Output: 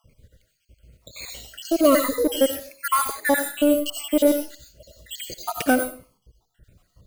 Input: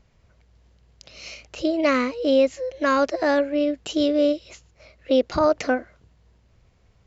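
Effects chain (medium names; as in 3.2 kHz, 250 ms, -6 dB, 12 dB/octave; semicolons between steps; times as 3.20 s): random holes in the spectrogram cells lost 69%; in parallel at -3 dB: hard clipper -24 dBFS, distortion -6 dB; on the sum: careless resampling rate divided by 4×, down filtered, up hold; on a send at -8 dB: treble shelf 3.8 kHz +11.5 dB + reverberation RT60 0.35 s, pre-delay 50 ms; on the sum: Shepard-style phaser falling 1 Hz; trim +3 dB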